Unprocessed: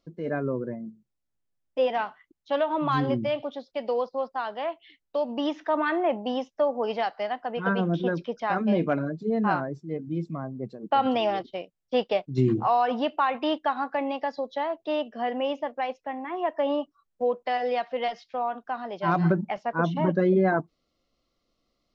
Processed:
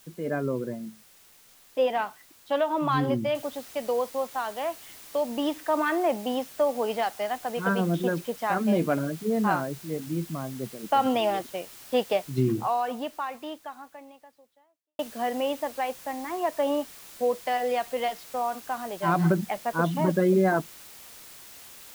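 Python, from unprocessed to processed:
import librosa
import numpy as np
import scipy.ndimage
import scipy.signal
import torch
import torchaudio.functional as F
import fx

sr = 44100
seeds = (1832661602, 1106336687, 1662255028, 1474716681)

y = fx.noise_floor_step(x, sr, seeds[0], at_s=3.35, before_db=-56, after_db=-47, tilt_db=0.0)
y = fx.edit(y, sr, fx.fade_out_span(start_s=12.16, length_s=2.83, curve='qua'), tone=tone)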